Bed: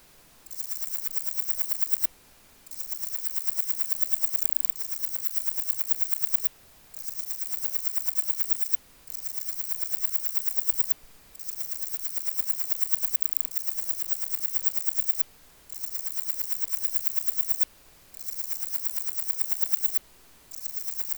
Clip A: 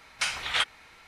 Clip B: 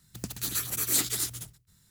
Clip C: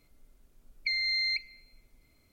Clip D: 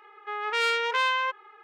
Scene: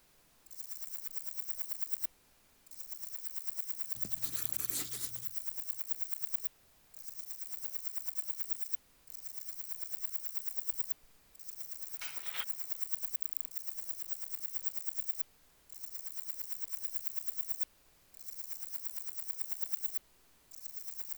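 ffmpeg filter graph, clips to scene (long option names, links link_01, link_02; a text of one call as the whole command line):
ffmpeg -i bed.wav -i cue0.wav -i cue1.wav -filter_complex "[0:a]volume=-11dB[link_01];[1:a]highpass=frequency=99:width=0.5412,highpass=frequency=99:width=1.3066[link_02];[2:a]atrim=end=1.9,asetpts=PTS-STARTPTS,volume=-12.5dB,afade=type=in:duration=0.004:curve=hsin,afade=type=out:start_time=1.896:duration=0.004:curve=hsin,adelay=168021S[link_03];[link_02]atrim=end=1.07,asetpts=PTS-STARTPTS,volume=-17.5dB,afade=type=in:duration=0.004:curve=hsin,afade=type=out:start_time=1.066:duration=0.004:curve=hsin,adelay=11800[link_04];[link_01][link_03][link_04]amix=inputs=3:normalize=0" out.wav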